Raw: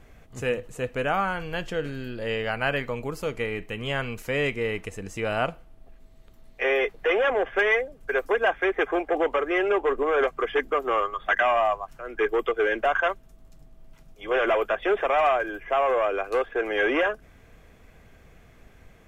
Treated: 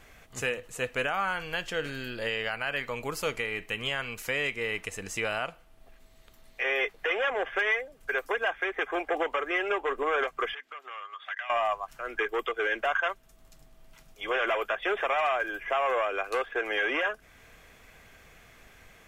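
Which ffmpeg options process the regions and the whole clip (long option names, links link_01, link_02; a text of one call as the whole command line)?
ffmpeg -i in.wav -filter_complex "[0:a]asettb=1/sr,asplit=3[link_01][link_02][link_03];[link_01]atrim=end=10.544[link_04];[link_02]atrim=start=10.54:end=11.5,asetpts=PTS-STARTPTS,afade=type=in:duration=0.004:curve=qsin,afade=type=out:start_time=0.956:duration=0.004:curve=qsin,acompressor=threshold=-35dB:ratio=5:attack=3.2:release=140:knee=1:detection=peak,bandpass=frequency=2600:width_type=q:width=0.81[link_05];[link_03]atrim=start=11.496[link_06];[link_04][link_05]acrossfade=duration=0.004:curve1=hsin:curve2=qsin[link_07];[link_07][link_06]acrossfade=duration=0.004:curve1=qsin:curve2=hsin,tiltshelf=frequency=720:gain=-6.5,alimiter=limit=-18dB:level=0:latency=1:release=385" out.wav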